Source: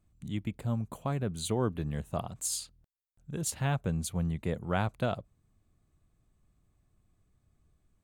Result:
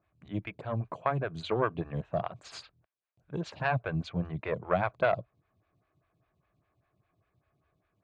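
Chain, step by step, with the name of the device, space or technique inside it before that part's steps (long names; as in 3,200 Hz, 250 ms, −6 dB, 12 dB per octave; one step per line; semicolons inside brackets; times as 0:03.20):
vibe pedal into a guitar amplifier (phaser with staggered stages 5 Hz; tube saturation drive 22 dB, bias 0.7; loudspeaker in its box 89–4,500 Hz, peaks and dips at 120 Hz +4 dB, 230 Hz −8 dB, 650 Hz +6 dB, 1,100 Hz +5 dB, 1,600 Hz +7 dB, 2,400 Hz +7 dB)
level +8 dB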